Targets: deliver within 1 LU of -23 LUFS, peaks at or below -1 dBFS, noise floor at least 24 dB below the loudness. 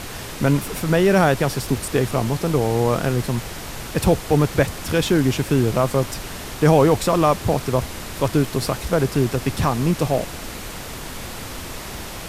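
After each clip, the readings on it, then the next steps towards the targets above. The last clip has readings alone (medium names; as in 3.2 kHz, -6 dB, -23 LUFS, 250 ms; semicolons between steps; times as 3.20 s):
noise floor -33 dBFS; noise floor target -44 dBFS; loudness -20.0 LUFS; peak level -4.0 dBFS; loudness target -23.0 LUFS
-> noise print and reduce 11 dB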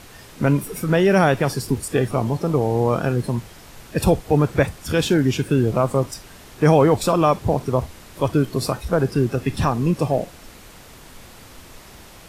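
noise floor -44 dBFS; noise floor target -45 dBFS
-> noise print and reduce 6 dB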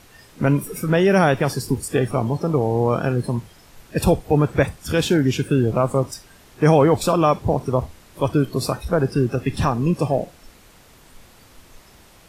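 noise floor -50 dBFS; loudness -20.5 LUFS; peak level -4.0 dBFS; loudness target -23.0 LUFS
-> trim -2.5 dB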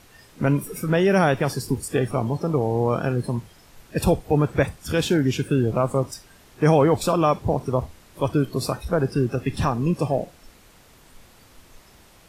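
loudness -23.0 LUFS; peak level -6.5 dBFS; noise floor -52 dBFS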